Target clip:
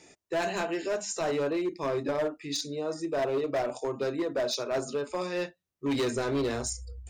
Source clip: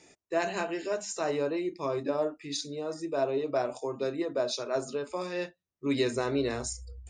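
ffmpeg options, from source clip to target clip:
ffmpeg -i in.wav -af "asoftclip=type=hard:threshold=-27dB,volume=2.5dB" out.wav

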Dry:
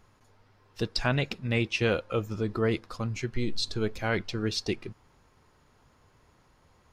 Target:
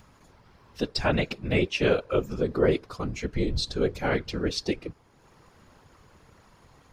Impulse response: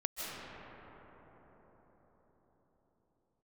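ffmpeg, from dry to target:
-af "acompressor=mode=upward:threshold=-48dB:ratio=2.5,afftfilt=real='hypot(re,im)*cos(2*PI*random(0))':imag='hypot(re,im)*sin(2*PI*random(1))':win_size=512:overlap=0.75,adynamicequalizer=threshold=0.00447:dfrequency=450:dqfactor=1.2:tfrequency=450:tqfactor=1.2:attack=5:release=100:ratio=0.375:range=2.5:mode=boostabove:tftype=bell,volume=6.5dB"

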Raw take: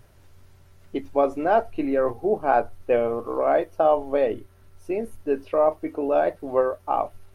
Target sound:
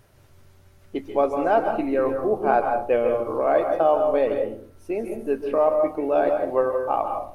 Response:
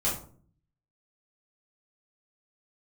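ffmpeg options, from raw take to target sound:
-filter_complex "[0:a]lowshelf=frequency=70:gain=-10.5,asplit=2[link_01][link_02];[1:a]atrim=start_sample=2205,adelay=132[link_03];[link_02][link_03]afir=irnorm=-1:irlink=0,volume=-13.5dB[link_04];[link_01][link_04]amix=inputs=2:normalize=0"

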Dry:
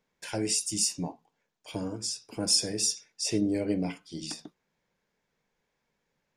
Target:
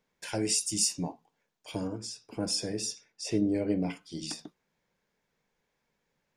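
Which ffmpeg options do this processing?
ffmpeg -i in.wav -filter_complex "[0:a]asettb=1/sr,asplit=3[link_01][link_02][link_03];[link_01]atrim=end=1.874[link_04];[link_02]atrim=start=1.87:end=3.9,asetpts=PTS-STARTPTS,afade=type=in:duration=0.004:curve=qsin,afade=type=out:start_time=2.026:duration=0.004:curve=qsin,highshelf=frequency=3600:gain=-10[link_05];[link_03]atrim=start=3.896[link_06];[link_04][link_05]acrossfade=duration=0.004:curve1=hsin:curve2=qsin[link_07];[link_07][link_06]acrossfade=duration=0.004:curve1=qsin:curve2=hsin" out.wav

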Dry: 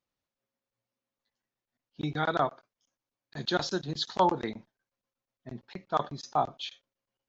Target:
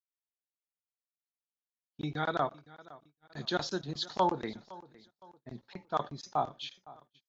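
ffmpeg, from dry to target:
ffmpeg -i in.wav -af "aecho=1:1:511|1022|1533:0.0944|0.0397|0.0167,agate=range=-25dB:threshold=-56dB:ratio=16:detection=peak,volume=-3.5dB" out.wav

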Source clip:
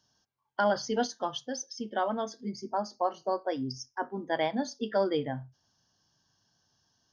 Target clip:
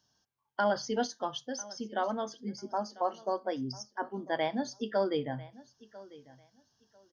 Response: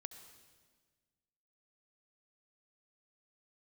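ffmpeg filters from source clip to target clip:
-af "aecho=1:1:996|1992:0.1|0.021,volume=-2dB"

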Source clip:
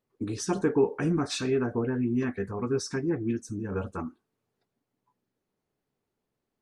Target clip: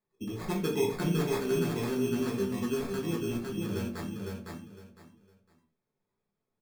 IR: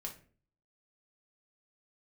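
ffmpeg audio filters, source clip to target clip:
-filter_complex "[0:a]acrusher=samples=15:mix=1:aa=0.000001,aecho=1:1:507|1014|1521:0.668|0.16|0.0385[link_01];[1:a]atrim=start_sample=2205,atrim=end_sample=6615[link_02];[link_01][link_02]afir=irnorm=-1:irlink=0,volume=-2.5dB"

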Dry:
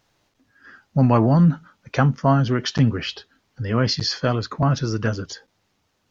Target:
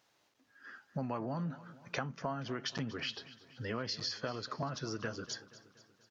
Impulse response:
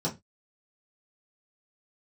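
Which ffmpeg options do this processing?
-af "highpass=frequency=370:poles=1,acompressor=threshold=-30dB:ratio=6,aecho=1:1:238|476|714|952|1190:0.133|0.0733|0.0403|0.0222|0.0122,volume=-5dB"

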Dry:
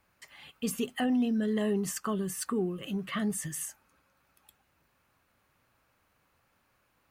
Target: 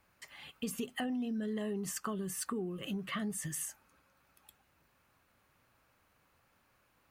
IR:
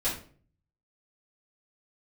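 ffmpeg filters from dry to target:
-af "acompressor=threshold=-35dB:ratio=4"

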